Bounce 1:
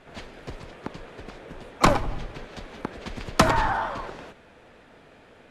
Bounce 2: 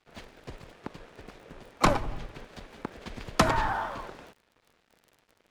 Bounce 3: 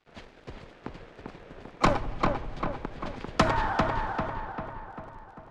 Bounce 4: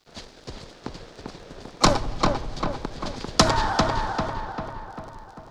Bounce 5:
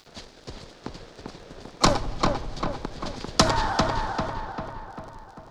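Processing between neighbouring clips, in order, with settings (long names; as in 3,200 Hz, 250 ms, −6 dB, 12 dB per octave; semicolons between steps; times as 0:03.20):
dead-zone distortion −49.5 dBFS; surface crackle 20 per second −40 dBFS; level −4 dB
high-frequency loss of the air 74 metres; feedback echo with a low-pass in the loop 395 ms, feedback 55%, low-pass 2,700 Hz, level −3 dB
high shelf with overshoot 3,400 Hz +10 dB, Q 1.5; level +4.5 dB
upward compression, threshold −44 dBFS; level −1.5 dB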